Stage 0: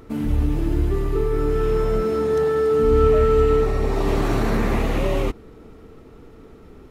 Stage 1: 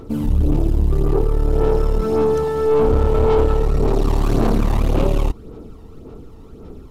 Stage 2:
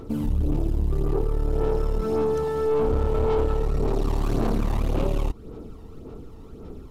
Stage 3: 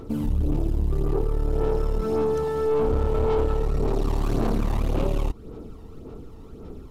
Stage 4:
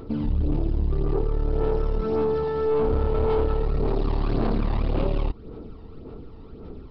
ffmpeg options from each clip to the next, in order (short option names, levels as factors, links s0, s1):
-af "aphaser=in_gain=1:out_gain=1:delay=1.1:decay=0.49:speed=1.8:type=sinusoidal,aeval=exprs='(tanh(6.31*val(0)+0.45)-tanh(0.45))/6.31':c=same,equalizer=f=1900:t=o:w=0.89:g=-10,volume=1.68"
-af "acompressor=threshold=0.0631:ratio=1.5,volume=0.75"
-af anull
-af "aresample=11025,aresample=44100"